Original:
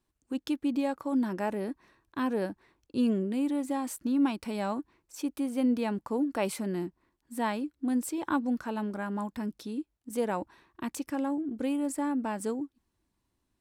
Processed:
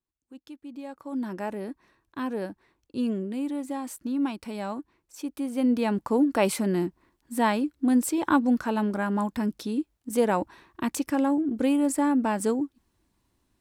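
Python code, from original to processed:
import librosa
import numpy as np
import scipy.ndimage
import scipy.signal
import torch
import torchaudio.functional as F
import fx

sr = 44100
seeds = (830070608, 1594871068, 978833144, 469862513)

y = fx.gain(x, sr, db=fx.line((0.64, -13.0), (1.3, -1.0), (5.26, -1.0), (6.05, 7.0)))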